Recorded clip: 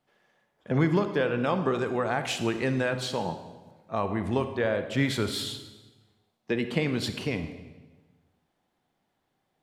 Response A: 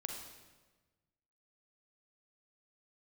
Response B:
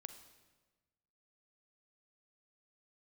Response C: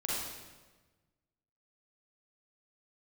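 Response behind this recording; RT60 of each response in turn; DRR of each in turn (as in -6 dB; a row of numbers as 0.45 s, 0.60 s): B; 1.3 s, 1.3 s, 1.3 s; 1.5 dB, 8.5 dB, -7.0 dB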